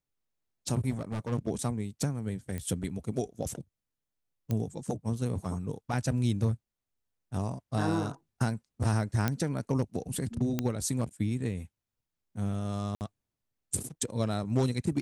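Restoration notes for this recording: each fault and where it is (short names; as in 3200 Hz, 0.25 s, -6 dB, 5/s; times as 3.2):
0.9–1.33 clipped -30.5 dBFS
2.58 pop -23 dBFS
4.51 pop -19 dBFS
9.28 pop -13 dBFS
10.59 pop -15 dBFS
12.95–13.01 gap 59 ms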